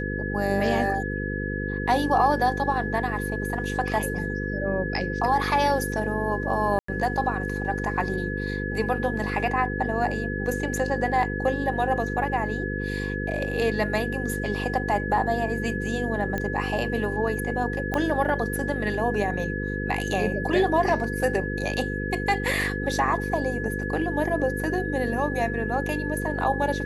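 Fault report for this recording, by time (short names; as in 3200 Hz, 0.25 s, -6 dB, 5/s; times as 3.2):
buzz 50 Hz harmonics 10 -30 dBFS
tone 1700 Hz -32 dBFS
6.79–6.88 gap 94 ms
16.38 pop -15 dBFS
17.94 pop -13 dBFS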